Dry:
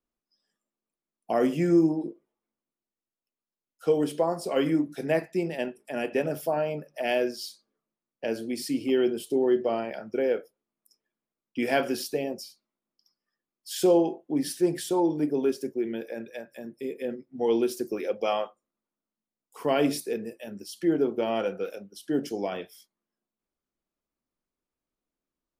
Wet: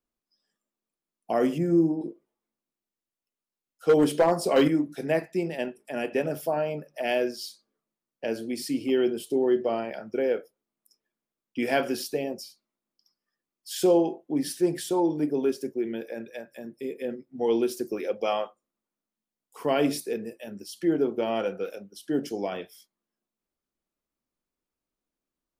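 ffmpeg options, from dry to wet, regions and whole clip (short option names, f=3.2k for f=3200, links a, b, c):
-filter_complex "[0:a]asettb=1/sr,asplit=3[a][b][c];[a]atrim=end=1.584[d];[b]atrim=start=1.58:end=2.01,asetpts=PTS-STARTPTS,afade=t=in:d=0.004:c=qsin,afade=t=out:st=0.426:d=0.004:c=qsin,equalizer=f=3.3k:w=0.44:g=-14.5,asplit=2[e][f];[f]adelay=36,volume=-11.5dB[g];[e][g]amix=inputs=2:normalize=0,atrim=end_sample=18963[h];[c]atrim=start=2.006[i];[d][h]acrossfade=d=0.004:c1=hsin:c2=qsin[j];[j][i]acrossfade=d=0.004:c1=qsin:c2=hsin,asettb=1/sr,asplit=3[k][l][m];[k]atrim=end=3.894[n];[l]atrim=start=3.89:end=4.68,asetpts=PTS-STARTPTS,afade=t=in:d=0.004:c=qsin,afade=t=out:st=0.786:d=0.004:c=qsin,acontrast=48,asoftclip=type=hard:threshold=-14dB[o];[m]atrim=start=4.676[p];[n][o]acrossfade=d=0.004:c1=hsin:c2=qsin[q];[q][p]acrossfade=d=0.004:c1=qsin:c2=hsin"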